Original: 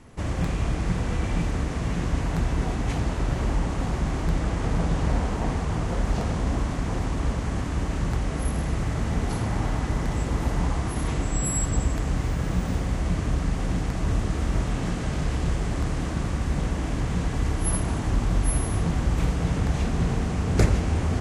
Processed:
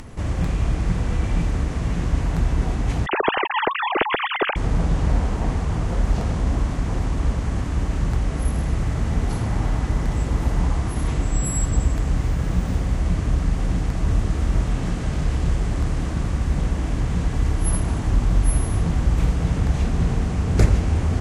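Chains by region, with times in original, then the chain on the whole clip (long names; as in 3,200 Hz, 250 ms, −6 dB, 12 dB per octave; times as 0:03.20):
0:03.06–0:04.56: three sine waves on the formant tracks + low-pass with resonance 3,000 Hz, resonance Q 2.8
whole clip: low-shelf EQ 110 Hz +6.5 dB; upward compression, threshold −30 dBFS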